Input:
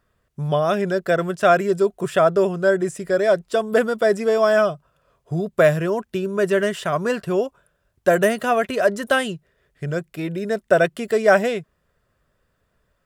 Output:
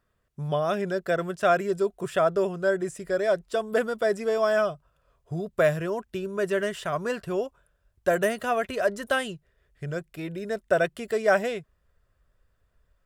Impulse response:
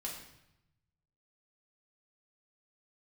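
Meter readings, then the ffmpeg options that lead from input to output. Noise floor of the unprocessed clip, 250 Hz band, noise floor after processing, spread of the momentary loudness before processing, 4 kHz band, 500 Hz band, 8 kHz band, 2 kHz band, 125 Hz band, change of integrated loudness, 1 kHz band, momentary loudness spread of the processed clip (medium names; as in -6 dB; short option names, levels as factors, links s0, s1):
-70 dBFS, -8.0 dB, -72 dBFS, 10 LU, -6.0 dB, -6.5 dB, -6.0 dB, -6.0 dB, -7.5 dB, -6.5 dB, -6.0 dB, 11 LU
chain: -af "asubboost=boost=4:cutoff=82,volume=0.501"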